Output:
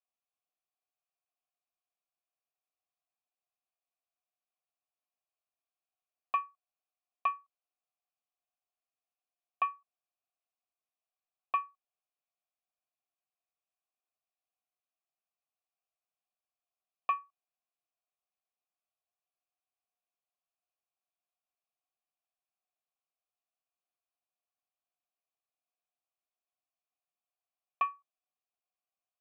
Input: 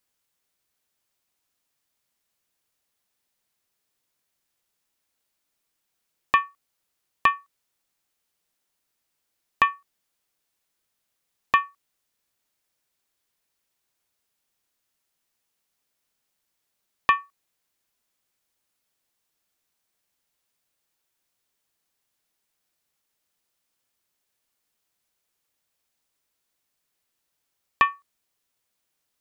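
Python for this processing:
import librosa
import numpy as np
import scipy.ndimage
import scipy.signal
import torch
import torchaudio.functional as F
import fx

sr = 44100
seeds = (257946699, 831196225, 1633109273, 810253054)

y = fx.vowel_filter(x, sr, vowel='a')
y = y * librosa.db_to_amplitude(-4.0)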